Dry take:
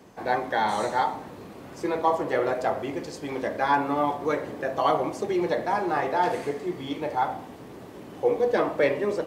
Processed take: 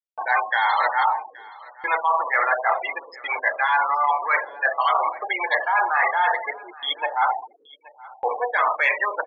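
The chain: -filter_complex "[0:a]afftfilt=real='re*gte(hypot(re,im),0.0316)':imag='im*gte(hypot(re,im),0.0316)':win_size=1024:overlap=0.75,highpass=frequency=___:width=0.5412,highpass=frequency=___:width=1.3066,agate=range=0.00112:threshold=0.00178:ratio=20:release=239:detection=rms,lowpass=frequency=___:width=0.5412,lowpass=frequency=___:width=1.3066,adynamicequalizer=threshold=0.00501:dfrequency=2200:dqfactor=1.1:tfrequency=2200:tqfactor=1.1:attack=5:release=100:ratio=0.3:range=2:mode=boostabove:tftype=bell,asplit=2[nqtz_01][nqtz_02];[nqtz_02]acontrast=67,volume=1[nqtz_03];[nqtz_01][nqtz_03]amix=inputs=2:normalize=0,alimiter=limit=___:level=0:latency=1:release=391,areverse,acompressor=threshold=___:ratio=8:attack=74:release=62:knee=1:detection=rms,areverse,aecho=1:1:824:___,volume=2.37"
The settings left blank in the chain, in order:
940, 940, 4400, 4400, 0.398, 0.0355, 0.0794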